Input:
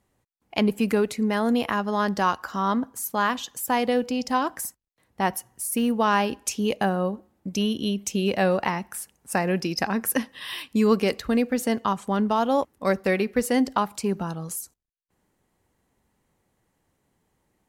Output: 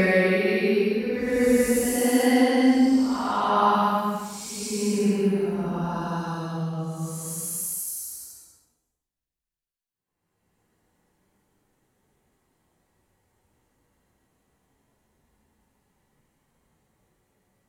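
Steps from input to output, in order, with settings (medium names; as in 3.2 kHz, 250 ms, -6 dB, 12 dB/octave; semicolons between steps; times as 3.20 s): Paulstretch 5.2×, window 0.25 s, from 13.09 s; trim +2 dB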